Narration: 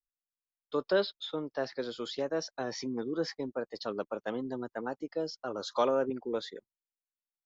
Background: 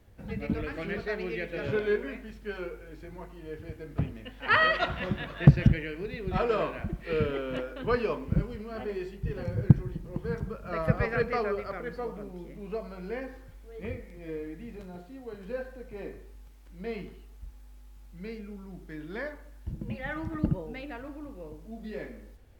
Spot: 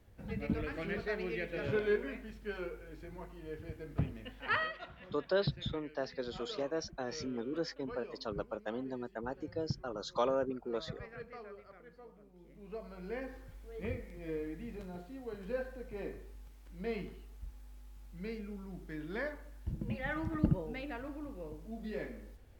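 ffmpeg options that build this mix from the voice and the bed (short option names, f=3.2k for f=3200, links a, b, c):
-filter_complex "[0:a]adelay=4400,volume=-4dB[a];[1:a]volume=13.5dB,afade=t=out:st=4.31:d=0.42:silence=0.16788,afade=t=in:st=12.32:d=1.24:silence=0.133352[b];[a][b]amix=inputs=2:normalize=0"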